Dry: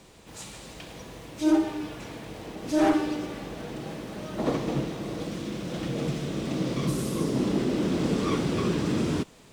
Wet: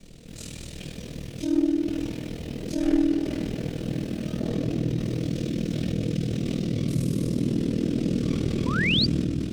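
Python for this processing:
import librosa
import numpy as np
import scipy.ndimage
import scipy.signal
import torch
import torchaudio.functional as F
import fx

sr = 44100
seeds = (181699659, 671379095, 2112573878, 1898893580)

p1 = x + fx.echo_split(x, sr, split_hz=560.0, low_ms=111, high_ms=225, feedback_pct=52, wet_db=-8.5, dry=0)
p2 = fx.room_shoebox(p1, sr, seeds[0], volume_m3=140.0, walls='mixed', distance_m=1.6)
p3 = p2 * np.sin(2.0 * np.pi * 20.0 * np.arange(len(p2)) / sr)
p4 = fx.low_shelf(p3, sr, hz=210.0, db=6.5)
p5 = fx.over_compress(p4, sr, threshold_db=-26.0, ratio=-1.0)
p6 = p4 + (p5 * librosa.db_to_amplitude(-2.5))
p7 = fx.spec_paint(p6, sr, seeds[1], shape='rise', start_s=8.66, length_s=0.4, low_hz=930.0, high_hz=4900.0, level_db=-14.0)
p8 = fx.peak_eq(p7, sr, hz=960.0, db=-15.0, octaves=1.1)
y = p8 * librosa.db_to_amplitude(-8.0)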